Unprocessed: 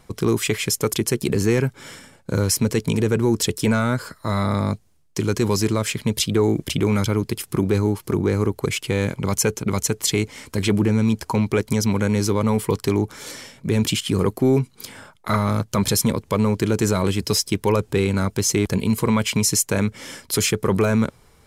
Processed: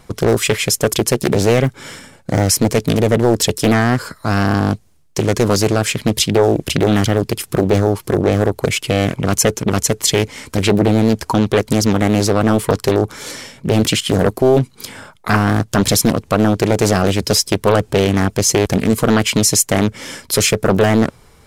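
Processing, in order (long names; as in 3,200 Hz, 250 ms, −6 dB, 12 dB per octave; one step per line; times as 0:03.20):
highs frequency-modulated by the lows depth 0.86 ms
level +6.5 dB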